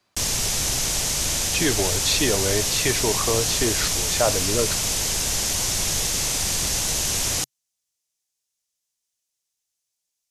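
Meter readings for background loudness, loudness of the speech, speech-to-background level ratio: −21.5 LKFS, −25.0 LKFS, −3.5 dB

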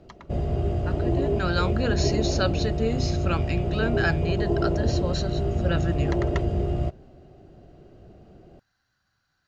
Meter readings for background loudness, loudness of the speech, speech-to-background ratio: −26.5 LKFS, −30.0 LKFS, −3.5 dB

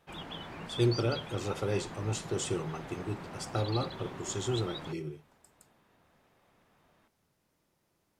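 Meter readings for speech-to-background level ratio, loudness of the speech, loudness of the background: 8.0 dB, −34.5 LKFS, −42.5 LKFS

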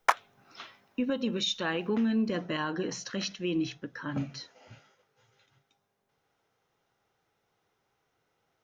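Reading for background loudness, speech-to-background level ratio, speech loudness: −31.5 LKFS, −0.5 dB, −32.0 LKFS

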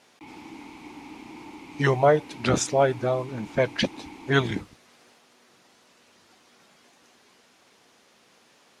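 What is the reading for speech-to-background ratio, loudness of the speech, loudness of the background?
19.5 dB, −24.5 LKFS, −44.0 LKFS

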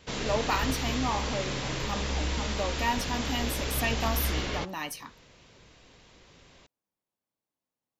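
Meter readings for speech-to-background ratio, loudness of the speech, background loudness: −1.0 dB, −33.0 LKFS, −32.0 LKFS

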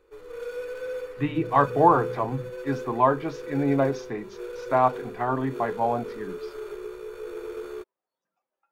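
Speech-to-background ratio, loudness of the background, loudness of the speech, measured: 12.0 dB, −37.0 LKFS, −25.0 LKFS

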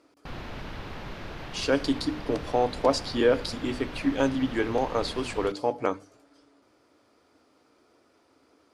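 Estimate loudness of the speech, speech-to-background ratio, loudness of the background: −27.5 LKFS, 12.5 dB, −40.0 LKFS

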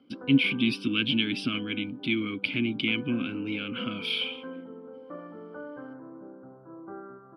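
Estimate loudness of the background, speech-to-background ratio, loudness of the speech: −44.0 LKFS, 16.0 dB, −28.0 LKFS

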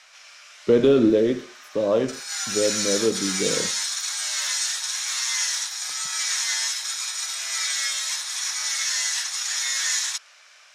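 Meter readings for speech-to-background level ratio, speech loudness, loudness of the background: 1.5 dB, −22.5 LKFS, −24.0 LKFS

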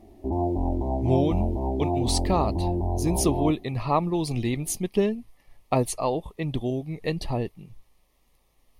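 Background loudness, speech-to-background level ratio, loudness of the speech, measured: −28.0 LKFS, 0.5 dB, −27.5 LKFS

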